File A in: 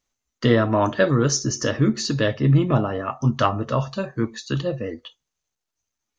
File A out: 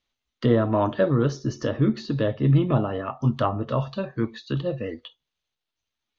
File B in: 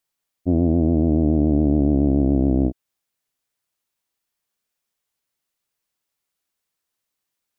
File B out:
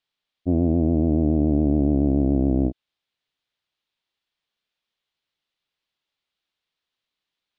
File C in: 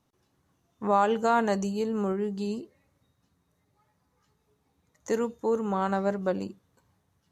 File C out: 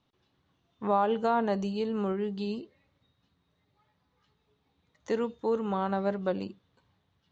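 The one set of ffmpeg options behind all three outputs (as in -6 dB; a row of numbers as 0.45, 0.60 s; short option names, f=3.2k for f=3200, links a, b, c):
-filter_complex "[0:a]lowpass=f=3.6k:t=q:w=2.4,acrossover=split=1200[a][b];[b]acompressor=threshold=-39dB:ratio=6[c];[a][c]amix=inputs=2:normalize=0,volume=-2dB"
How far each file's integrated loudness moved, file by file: -2.5, -2.0, -2.5 LU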